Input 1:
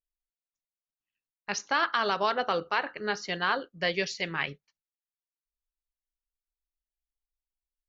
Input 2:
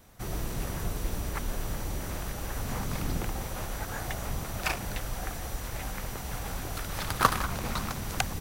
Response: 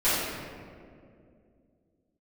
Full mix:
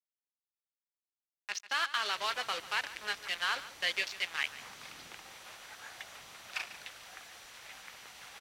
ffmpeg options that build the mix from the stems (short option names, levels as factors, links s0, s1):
-filter_complex "[0:a]acrusher=bits=4:mix=0:aa=0.5,volume=0.562,asplit=2[s0][s1];[s1]volume=0.15[s2];[1:a]adelay=1900,volume=0.355,asplit=2[s3][s4];[s4]volume=0.2[s5];[s2][s5]amix=inputs=2:normalize=0,aecho=0:1:145:1[s6];[s0][s3][s6]amix=inputs=3:normalize=0,dynaudnorm=f=210:g=13:m=1.78,bandpass=f=3100:t=q:w=0.93:csg=0"